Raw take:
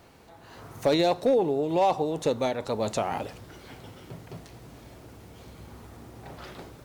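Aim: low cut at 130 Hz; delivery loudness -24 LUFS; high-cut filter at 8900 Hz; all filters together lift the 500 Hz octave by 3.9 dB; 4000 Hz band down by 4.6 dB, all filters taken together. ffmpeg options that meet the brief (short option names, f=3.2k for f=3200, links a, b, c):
-af "highpass=130,lowpass=8.9k,equalizer=f=500:t=o:g=4.5,equalizer=f=4k:t=o:g=-5,volume=-1dB"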